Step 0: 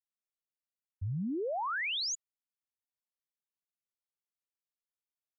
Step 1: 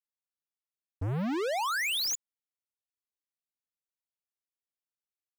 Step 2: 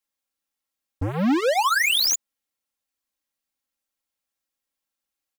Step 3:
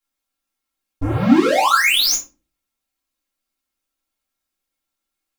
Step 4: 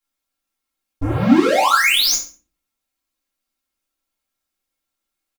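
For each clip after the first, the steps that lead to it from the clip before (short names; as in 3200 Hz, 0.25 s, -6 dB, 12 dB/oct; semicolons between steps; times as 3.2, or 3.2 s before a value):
sample leveller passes 5; gain +1.5 dB
comb 3.7 ms, depth 71%; gain +8 dB
shoebox room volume 160 m³, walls furnished, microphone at 3.2 m; gain -2 dB
feedback echo 67 ms, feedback 26%, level -12 dB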